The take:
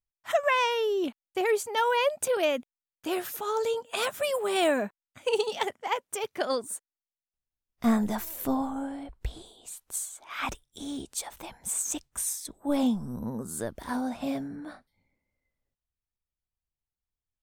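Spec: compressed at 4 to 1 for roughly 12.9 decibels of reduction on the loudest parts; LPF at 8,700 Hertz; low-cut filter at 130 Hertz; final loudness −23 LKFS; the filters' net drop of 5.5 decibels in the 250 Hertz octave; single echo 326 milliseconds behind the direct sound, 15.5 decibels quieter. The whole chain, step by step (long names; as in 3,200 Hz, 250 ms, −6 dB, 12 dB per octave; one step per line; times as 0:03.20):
high-pass filter 130 Hz
low-pass filter 8,700 Hz
parametric band 250 Hz −6 dB
downward compressor 4 to 1, threshold −37 dBFS
single-tap delay 326 ms −15.5 dB
level +17 dB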